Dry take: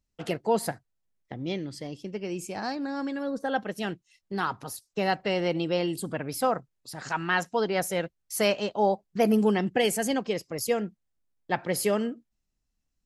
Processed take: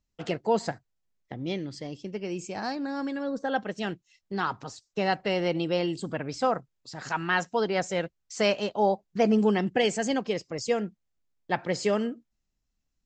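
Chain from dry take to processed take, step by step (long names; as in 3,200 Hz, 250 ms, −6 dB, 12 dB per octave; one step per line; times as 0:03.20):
Butterworth low-pass 7,800 Hz 96 dB per octave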